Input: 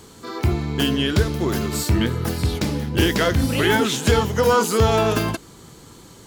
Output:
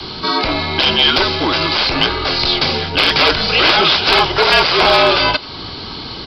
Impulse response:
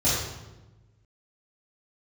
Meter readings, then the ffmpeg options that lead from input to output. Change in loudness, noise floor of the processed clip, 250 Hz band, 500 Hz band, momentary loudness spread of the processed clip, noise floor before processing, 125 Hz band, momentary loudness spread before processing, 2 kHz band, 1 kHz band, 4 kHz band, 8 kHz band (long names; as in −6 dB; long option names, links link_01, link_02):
+7.5 dB, −29 dBFS, −1.0 dB, +3.5 dB, 9 LU, −45 dBFS, −5.5 dB, 6 LU, +11.0 dB, +9.5 dB, +15.5 dB, −7.5 dB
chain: -filter_complex "[0:a]adynamicequalizer=threshold=0.0158:dfrequency=280:dqfactor=3.3:tfrequency=280:tqfactor=3.3:attack=5:release=100:ratio=0.375:range=3.5:mode=cutabove:tftype=bell,highpass=100,crystalizer=i=3.5:c=0,aeval=exprs='0.891*(cos(1*acos(clip(val(0)/0.891,-1,1)))-cos(1*PI/2))+0.141*(cos(3*acos(clip(val(0)/0.891,-1,1)))-cos(3*PI/2))+0.178*(cos(6*acos(clip(val(0)/0.891,-1,1)))-cos(6*PI/2))+0.355*(cos(7*acos(clip(val(0)/0.891,-1,1)))-cos(7*PI/2))+0.112*(cos(8*acos(clip(val(0)/0.891,-1,1)))-cos(8*PI/2))':channel_layout=same,asplit=2[link_01][link_02];[link_02]acompressor=threshold=-30dB:ratio=12,volume=-3dB[link_03];[link_01][link_03]amix=inputs=2:normalize=0,bandreject=frequency=1900:width=7.2,asoftclip=type=tanh:threshold=-1.5dB,acrossover=split=460|3000[link_04][link_05][link_06];[link_04]acompressor=threshold=-39dB:ratio=2.5[link_07];[link_07][link_05][link_06]amix=inputs=3:normalize=0,asplit=2[link_08][link_09];[link_09]aecho=0:1:90:0.0708[link_10];[link_08][link_10]amix=inputs=2:normalize=0,aresample=11025,aresample=44100,afreqshift=-58,asoftclip=type=hard:threshold=-8dB,volume=6.5dB"